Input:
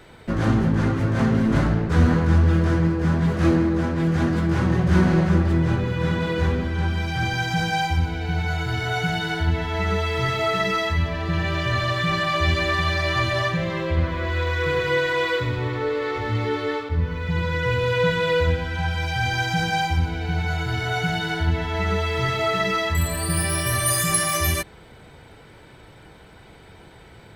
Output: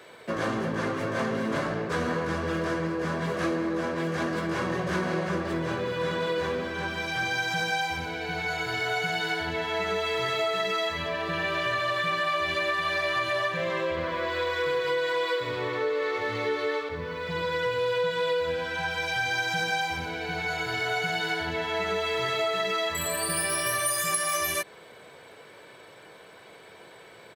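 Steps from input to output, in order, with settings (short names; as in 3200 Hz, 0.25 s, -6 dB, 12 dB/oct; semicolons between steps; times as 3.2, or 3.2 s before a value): HPF 300 Hz 12 dB/oct; comb 1.8 ms, depth 37%; compressor, threshold -24 dBFS, peak gain reduction 9 dB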